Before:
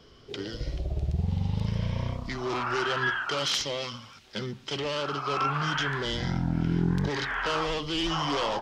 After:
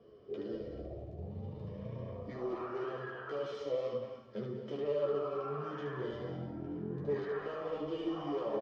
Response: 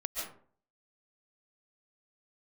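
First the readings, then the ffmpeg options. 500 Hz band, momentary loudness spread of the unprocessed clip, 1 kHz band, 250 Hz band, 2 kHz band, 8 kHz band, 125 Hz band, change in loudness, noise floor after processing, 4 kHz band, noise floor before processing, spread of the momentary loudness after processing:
-2.0 dB, 9 LU, -14.0 dB, -9.0 dB, -19.0 dB, under -30 dB, -14.5 dB, -10.0 dB, -54 dBFS, -24.0 dB, -53 dBFS, 8 LU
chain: -filter_complex "[0:a]aecho=1:1:1.7:0.42,alimiter=level_in=1.12:limit=0.0631:level=0:latency=1:release=38,volume=0.891,aecho=1:1:14|75:0.562|0.631,flanger=delay=8.7:depth=1.4:regen=41:speed=2:shape=sinusoidal,bandpass=f=360:t=q:w=1.6:csg=0,asplit=2[s0][s1];[1:a]atrim=start_sample=2205,asetrate=31311,aresample=44100[s2];[s1][s2]afir=irnorm=-1:irlink=0,volume=0.398[s3];[s0][s3]amix=inputs=2:normalize=0,volume=1.12"

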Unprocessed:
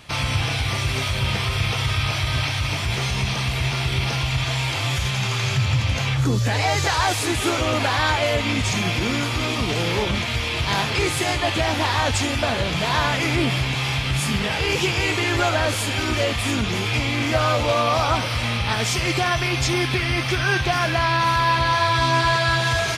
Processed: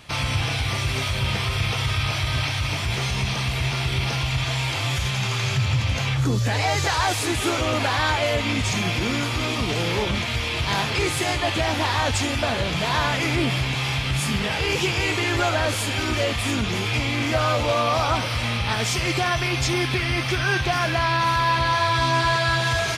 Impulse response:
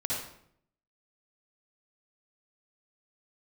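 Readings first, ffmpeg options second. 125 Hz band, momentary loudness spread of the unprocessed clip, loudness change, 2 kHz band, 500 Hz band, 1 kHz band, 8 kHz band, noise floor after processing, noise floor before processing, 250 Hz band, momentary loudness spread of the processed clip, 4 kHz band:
-1.5 dB, 4 LU, -1.5 dB, -1.5 dB, -1.5 dB, -1.5 dB, -1.5 dB, -26 dBFS, -25 dBFS, -1.5 dB, 4 LU, -1.5 dB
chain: -af "acontrast=51,volume=0.447"

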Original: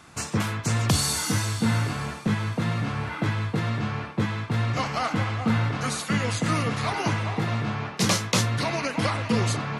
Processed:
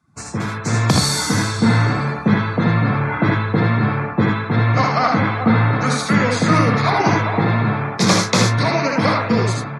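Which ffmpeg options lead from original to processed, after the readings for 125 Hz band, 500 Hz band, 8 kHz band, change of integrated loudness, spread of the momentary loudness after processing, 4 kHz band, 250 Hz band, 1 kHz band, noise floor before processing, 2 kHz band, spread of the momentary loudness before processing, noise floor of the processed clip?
+8.0 dB, +10.5 dB, +4.5 dB, +8.5 dB, 4 LU, +6.0 dB, +9.5 dB, +10.5 dB, -38 dBFS, +9.0 dB, 5 LU, -29 dBFS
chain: -filter_complex "[0:a]afftdn=nr=22:nf=-41,equalizer=f=2900:w=6:g=-15,acrossover=split=110|6200[s0][s1][s2];[s1]dynaudnorm=f=100:g=11:m=3.76[s3];[s0][s3][s2]amix=inputs=3:normalize=0,aecho=1:1:62|78:0.422|0.631,volume=0.891"

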